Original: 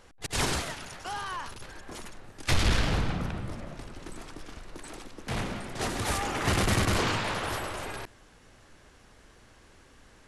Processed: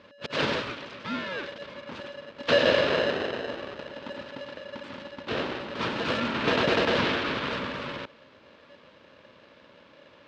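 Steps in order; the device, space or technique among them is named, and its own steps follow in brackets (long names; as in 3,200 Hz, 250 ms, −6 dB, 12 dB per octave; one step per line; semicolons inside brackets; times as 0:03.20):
ring modulator pedal into a guitar cabinet (ring modulator with a square carrier 570 Hz; loudspeaker in its box 91–3,900 Hz, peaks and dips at 250 Hz +5 dB, 740 Hz −10 dB, 2,000 Hz −4 dB)
level +3.5 dB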